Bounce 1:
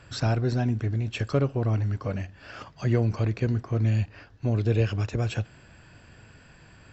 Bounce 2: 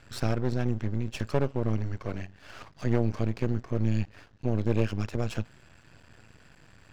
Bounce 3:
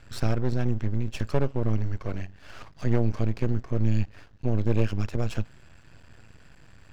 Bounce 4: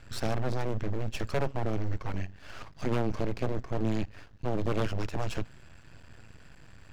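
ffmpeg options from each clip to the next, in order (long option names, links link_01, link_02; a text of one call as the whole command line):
ffmpeg -i in.wav -af "aeval=exprs='max(val(0),0)':channel_layout=same" out.wav
ffmpeg -i in.wav -af "lowshelf=frequency=80:gain=8" out.wav
ffmpeg -i in.wav -af "aeval=exprs='0.0891*(abs(mod(val(0)/0.0891+3,4)-2)-1)':channel_layout=same" out.wav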